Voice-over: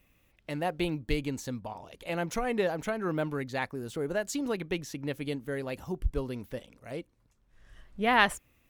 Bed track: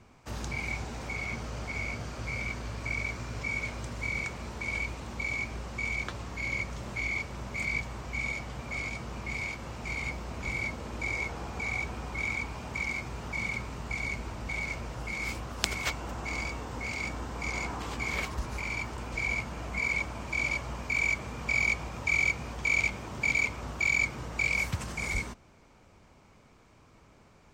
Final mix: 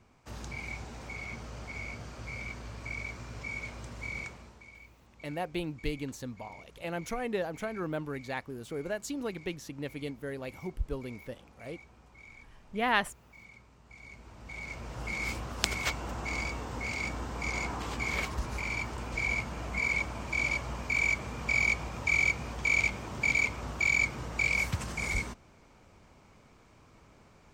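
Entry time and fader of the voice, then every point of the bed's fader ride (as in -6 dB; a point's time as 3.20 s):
4.75 s, -4.0 dB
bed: 4.23 s -5.5 dB
4.74 s -20.5 dB
13.82 s -20.5 dB
15.07 s 0 dB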